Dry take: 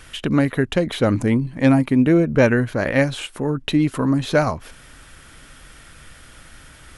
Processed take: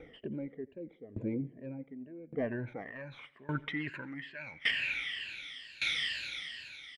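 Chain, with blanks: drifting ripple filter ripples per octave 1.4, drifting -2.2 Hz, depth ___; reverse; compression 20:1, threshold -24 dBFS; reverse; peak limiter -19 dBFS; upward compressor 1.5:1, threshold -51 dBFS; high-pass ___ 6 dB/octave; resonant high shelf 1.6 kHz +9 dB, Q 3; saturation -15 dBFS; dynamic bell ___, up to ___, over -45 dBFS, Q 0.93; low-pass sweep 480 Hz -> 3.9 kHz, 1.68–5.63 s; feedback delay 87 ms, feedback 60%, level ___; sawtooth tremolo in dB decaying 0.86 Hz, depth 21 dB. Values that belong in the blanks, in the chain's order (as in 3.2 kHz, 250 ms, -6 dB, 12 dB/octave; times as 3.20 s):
17 dB, 270 Hz, 590 Hz, -5 dB, -20.5 dB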